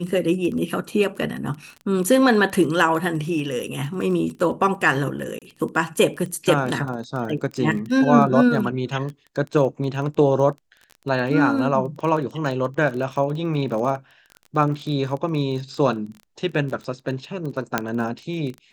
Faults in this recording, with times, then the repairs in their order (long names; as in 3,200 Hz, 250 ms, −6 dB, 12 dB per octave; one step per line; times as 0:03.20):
surface crackle 22 per second −29 dBFS
0:05.39–0:05.42: drop-out 27 ms
0:17.78: click −5 dBFS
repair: click removal
repair the gap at 0:05.39, 27 ms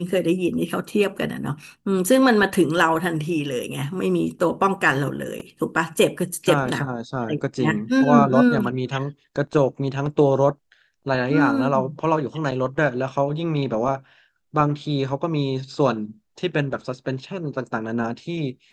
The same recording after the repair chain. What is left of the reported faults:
none of them is left